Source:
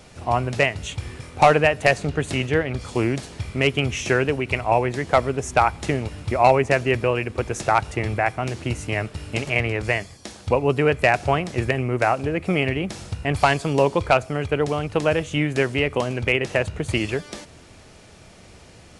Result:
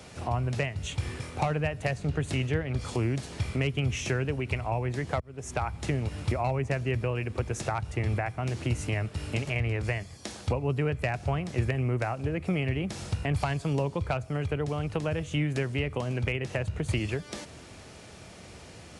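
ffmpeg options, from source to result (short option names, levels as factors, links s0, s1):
-filter_complex "[0:a]asplit=2[s0][s1];[s0]atrim=end=5.2,asetpts=PTS-STARTPTS,afade=t=out:st=5.196:d=0.004:c=hsin[s2];[s1]atrim=start=5.2,asetpts=PTS-STARTPTS,afade=t=in:d=0.53[s3];[s2][s3]concat=n=2:v=0:a=1,highpass=54,acrossover=split=160[s4][s5];[s5]acompressor=threshold=0.0224:ratio=3[s6];[s4][s6]amix=inputs=2:normalize=0"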